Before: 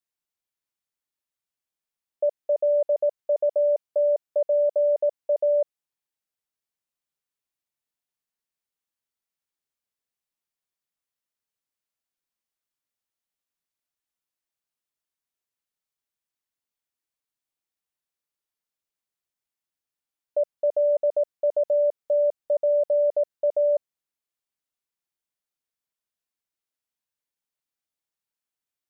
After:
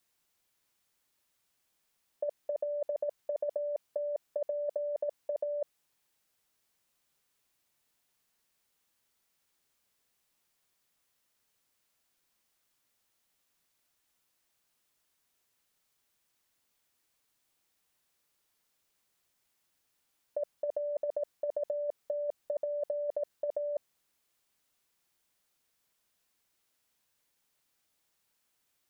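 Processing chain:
compressor whose output falls as the input rises −29 dBFS, ratio −0.5

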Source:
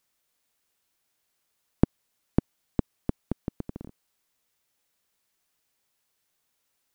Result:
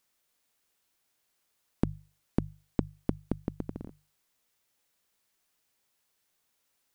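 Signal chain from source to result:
stylus tracing distortion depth 0.06 ms
mains-hum notches 50/100/150 Hz
brickwall limiter −9.5 dBFS, peak gain reduction 6.5 dB

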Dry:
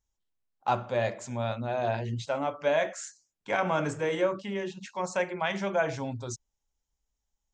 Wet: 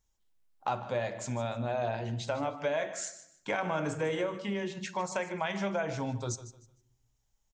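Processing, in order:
downward compressor 3 to 1, threshold −37 dBFS, peak gain reduction 12 dB
on a send: repeating echo 152 ms, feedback 26%, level −14.5 dB
on the sum: rectangular room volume 1,900 cubic metres, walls furnished, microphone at 0.51 metres
level +5 dB

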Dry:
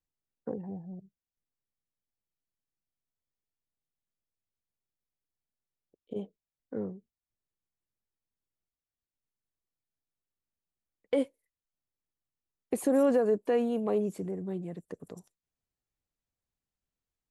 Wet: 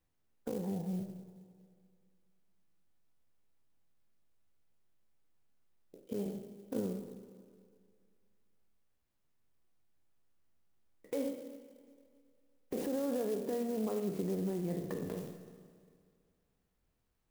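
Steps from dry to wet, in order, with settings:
peak hold with a decay on every bin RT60 0.45 s
tilt shelving filter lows +3 dB, about 1,500 Hz
downward compressor 3 to 1, threshold −43 dBFS, peak gain reduction 17.5 dB
brickwall limiter −35 dBFS, peak gain reduction 8 dB
0:06.22–0:06.80: double-tracking delay 40 ms −2.5 dB
0:12.86–0:13.87: high-frequency loss of the air 460 metres
four-comb reverb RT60 2.1 s, combs from 25 ms, DRR 8.5 dB
converter with an unsteady clock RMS 0.044 ms
level +7.5 dB

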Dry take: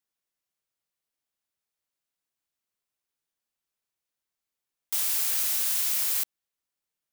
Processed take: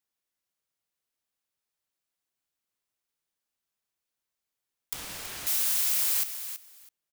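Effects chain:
0:04.93–0:05.47: RIAA equalisation playback
repeating echo 327 ms, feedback 16%, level −10.5 dB

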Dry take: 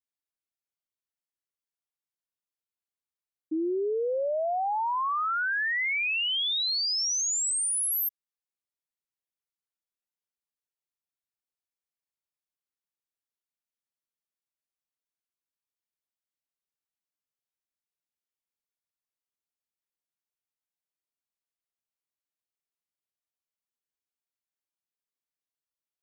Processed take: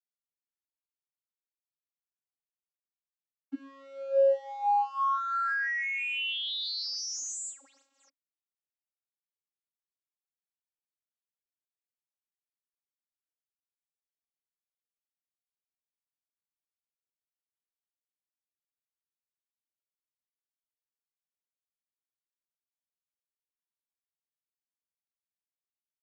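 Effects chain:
mu-law and A-law mismatch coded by A
channel vocoder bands 32, saw 273 Hz
bass and treble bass −12 dB, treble 0 dB

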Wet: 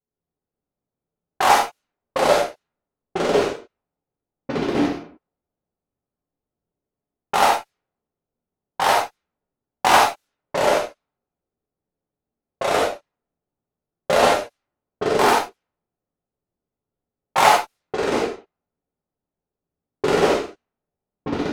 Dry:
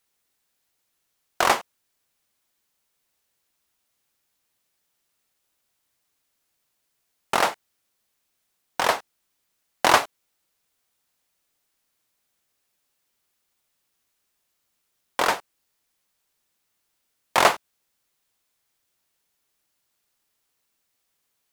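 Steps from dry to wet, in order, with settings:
dynamic equaliser 830 Hz, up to +7 dB, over −37 dBFS, Q 4.7
delay with pitch and tempo change per echo 173 ms, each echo −6 semitones, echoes 3
in parallel at −9 dB: fuzz pedal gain 26 dB, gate −32 dBFS
on the sum: low-pass that shuts in the quiet parts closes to 470 Hz, open at −18 dBFS
reverb whose tail is shaped and stops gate 110 ms flat, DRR −3.5 dB
level −5 dB

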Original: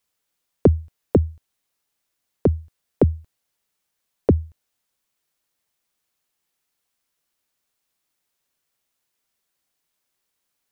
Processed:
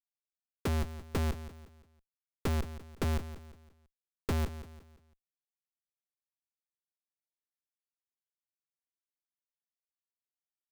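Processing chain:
moving average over 47 samples
comparator with hysteresis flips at −35 dBFS
repeating echo 171 ms, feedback 39%, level −13 dB

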